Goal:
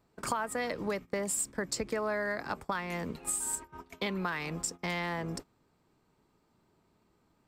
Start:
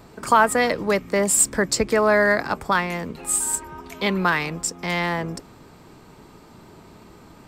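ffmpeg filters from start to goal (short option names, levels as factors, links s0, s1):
-af "acompressor=threshold=0.0447:ratio=5,agate=range=0.1:threshold=0.0158:ratio=16:detection=peak,volume=0.631"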